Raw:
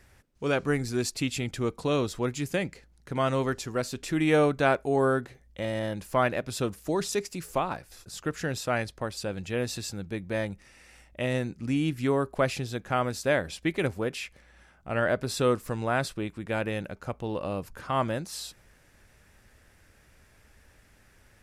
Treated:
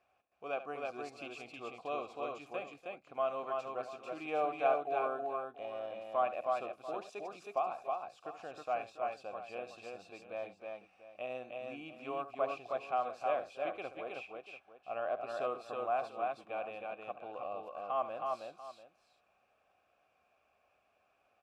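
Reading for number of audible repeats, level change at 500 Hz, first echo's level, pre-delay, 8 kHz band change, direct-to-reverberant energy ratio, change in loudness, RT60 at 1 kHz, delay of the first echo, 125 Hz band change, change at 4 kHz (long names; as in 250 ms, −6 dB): 3, −8.5 dB, −13.0 dB, no reverb audible, below −25 dB, no reverb audible, −9.5 dB, no reverb audible, 71 ms, −30.5 dB, −17.0 dB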